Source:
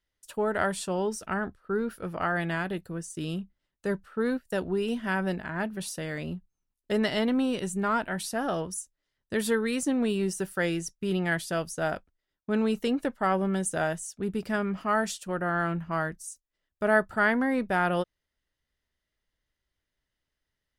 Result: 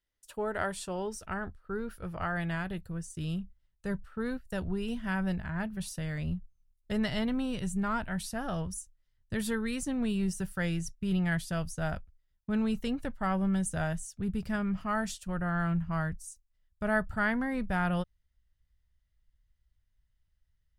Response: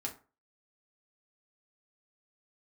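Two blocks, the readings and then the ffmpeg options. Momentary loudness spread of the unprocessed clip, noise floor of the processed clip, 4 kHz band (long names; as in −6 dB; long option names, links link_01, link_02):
9 LU, −75 dBFS, −5.0 dB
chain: -af "asubboost=boost=12:cutoff=100,volume=-5dB"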